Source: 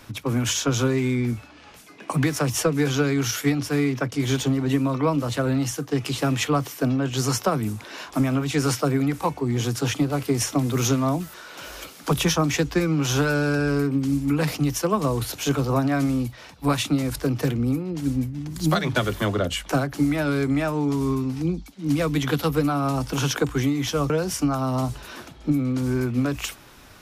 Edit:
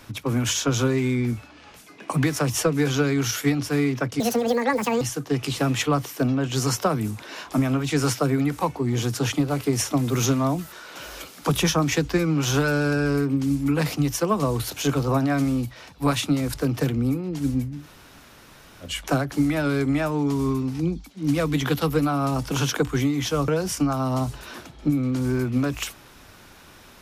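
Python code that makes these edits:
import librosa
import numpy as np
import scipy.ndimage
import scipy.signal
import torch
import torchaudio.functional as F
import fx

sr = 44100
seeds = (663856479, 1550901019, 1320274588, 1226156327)

y = fx.edit(x, sr, fx.speed_span(start_s=4.2, length_s=1.43, speed=1.76),
    fx.room_tone_fill(start_s=18.41, length_s=1.09, crossfade_s=0.16), tone=tone)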